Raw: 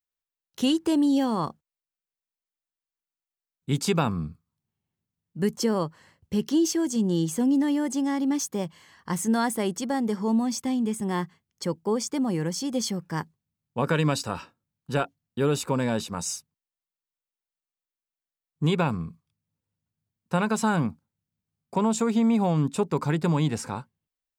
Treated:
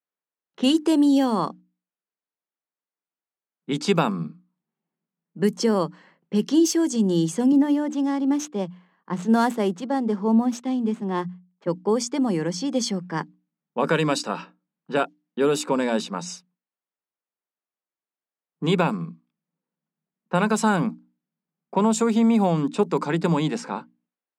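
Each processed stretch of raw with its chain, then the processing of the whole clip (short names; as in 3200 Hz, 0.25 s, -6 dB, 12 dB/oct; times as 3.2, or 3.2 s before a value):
7.52–11.67 median filter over 9 samples + bell 2000 Hz -4 dB 0.6 oct + three-band expander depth 70%
whole clip: elliptic high-pass 170 Hz; low-pass opened by the level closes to 1800 Hz, open at -20.5 dBFS; notches 60/120/180/240/300 Hz; gain +4.5 dB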